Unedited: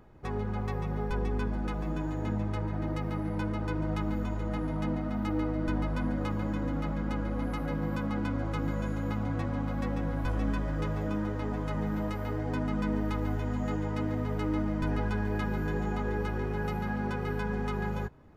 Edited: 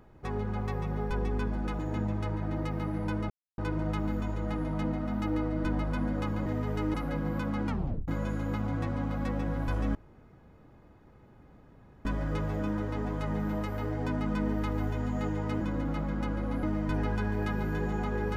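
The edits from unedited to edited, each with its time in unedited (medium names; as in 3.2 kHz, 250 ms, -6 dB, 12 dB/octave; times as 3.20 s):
1.79–2.10 s: delete
3.61 s: insert silence 0.28 s
6.49–7.51 s: swap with 14.08–14.56 s
8.24 s: tape stop 0.41 s
10.52 s: insert room tone 2.10 s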